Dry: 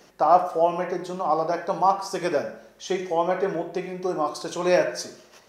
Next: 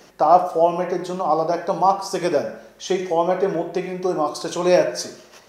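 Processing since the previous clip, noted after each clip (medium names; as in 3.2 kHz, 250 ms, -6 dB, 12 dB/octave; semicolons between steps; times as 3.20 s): dynamic bell 1.7 kHz, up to -6 dB, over -36 dBFS, Q 0.99; trim +5 dB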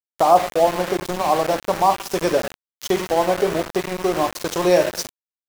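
in parallel at +1.5 dB: compression 5:1, threshold -26 dBFS, peak gain reduction 16.5 dB; on the sum: small samples zeroed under -20.5 dBFS; trim -2 dB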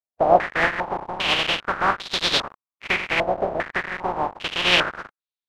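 spectral contrast reduction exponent 0.3; step-sequenced low-pass 2.5 Hz 680–3800 Hz; trim -4 dB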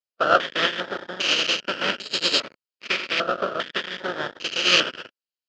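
comb filter that takes the minimum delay 0.43 ms; cabinet simulation 290–6100 Hz, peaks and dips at 530 Hz +3 dB, 790 Hz -10 dB, 1.3 kHz +8 dB, 2.1 kHz -9 dB, 3.2 kHz +9 dB, 5 kHz +4 dB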